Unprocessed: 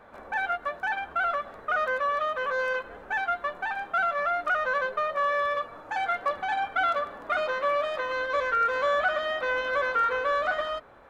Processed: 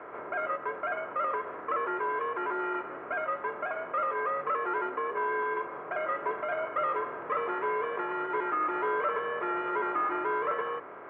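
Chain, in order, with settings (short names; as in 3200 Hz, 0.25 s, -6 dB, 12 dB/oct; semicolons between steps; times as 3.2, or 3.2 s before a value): per-bin compression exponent 0.6; mistuned SSB -150 Hz 300–2600 Hz; gain -6.5 dB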